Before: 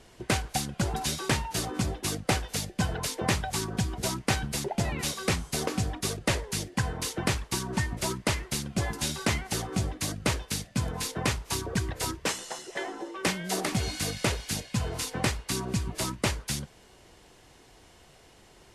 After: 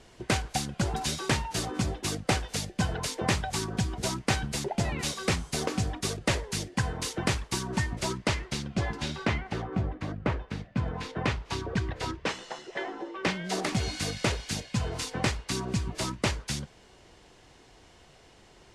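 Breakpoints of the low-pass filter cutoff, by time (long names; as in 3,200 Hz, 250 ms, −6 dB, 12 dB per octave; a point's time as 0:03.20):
0:07.75 9,200 Hz
0:09.16 3,500 Hz
0:09.78 1,700 Hz
0:10.44 1,700 Hz
0:11.46 3,900 Hz
0:13.23 3,900 Hz
0:13.67 7,600 Hz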